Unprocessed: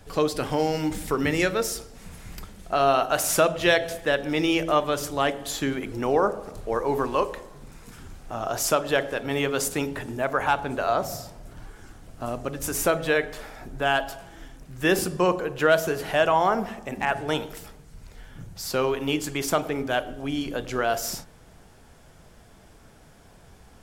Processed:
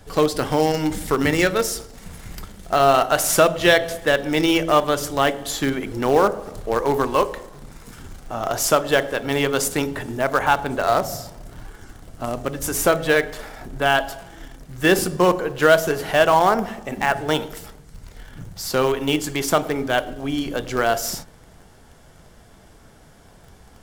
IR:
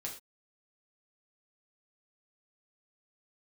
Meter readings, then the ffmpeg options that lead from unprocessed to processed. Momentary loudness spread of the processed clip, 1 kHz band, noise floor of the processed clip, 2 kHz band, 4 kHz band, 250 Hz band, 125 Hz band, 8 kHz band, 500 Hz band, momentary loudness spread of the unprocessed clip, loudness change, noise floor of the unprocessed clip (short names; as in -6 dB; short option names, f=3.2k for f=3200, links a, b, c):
15 LU, +5.0 dB, -49 dBFS, +5.0 dB, +5.0 dB, +4.5 dB, +5.0 dB, +4.5 dB, +5.0 dB, 15 LU, +5.0 dB, -52 dBFS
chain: -filter_complex "[0:a]bandreject=f=2.5k:w=16,asplit=2[a][b];[b]acrusher=bits=4:dc=4:mix=0:aa=0.000001,volume=-11dB[c];[a][c]amix=inputs=2:normalize=0,volume=3dB"